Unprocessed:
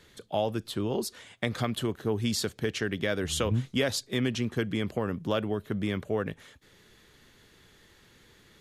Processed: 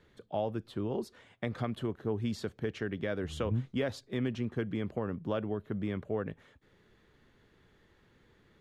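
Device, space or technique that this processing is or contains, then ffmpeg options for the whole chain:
through cloth: -af "highshelf=f=3400:g=-18,volume=0.631"

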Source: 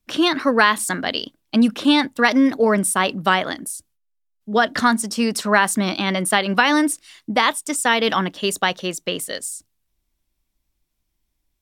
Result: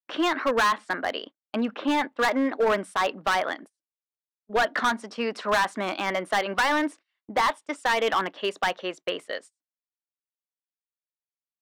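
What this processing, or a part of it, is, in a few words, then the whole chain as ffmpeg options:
walkie-talkie: -filter_complex "[0:a]asettb=1/sr,asplit=3[s0][s1][s2];[s0]atrim=end=0.554[s3];[s1]atrim=start=0.55:end=2.53,asetpts=PTS-STARTPTS,afade=t=in:d=0.004:c=qsin,afade=t=out:st=1.976:d=0.004:c=qsin,aemphasis=mode=reproduction:type=50fm[s4];[s2]atrim=start=2.526[s5];[s3][s4]acrossfade=d=0.004:c1=hsin:c2=qsin[s6];[s6][s5]acrossfade=d=0.004:c1=qsin:c2=hsin,highpass=470,lowpass=2200,asoftclip=type=hard:threshold=0.126,agate=range=0.0355:threshold=0.00794:ratio=16:detection=peak"

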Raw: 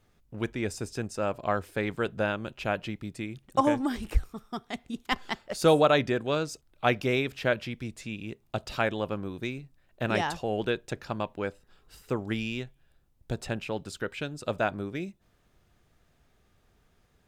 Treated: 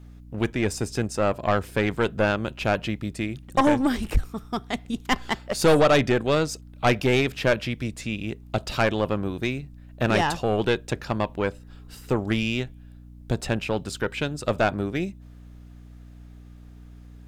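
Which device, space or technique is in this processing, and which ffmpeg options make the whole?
valve amplifier with mains hum: -af "aeval=exprs='(tanh(11.2*val(0)+0.4)-tanh(0.4))/11.2':c=same,aeval=exprs='val(0)+0.00251*(sin(2*PI*60*n/s)+sin(2*PI*2*60*n/s)/2+sin(2*PI*3*60*n/s)/3+sin(2*PI*4*60*n/s)/4+sin(2*PI*5*60*n/s)/5)':c=same,volume=2.66"

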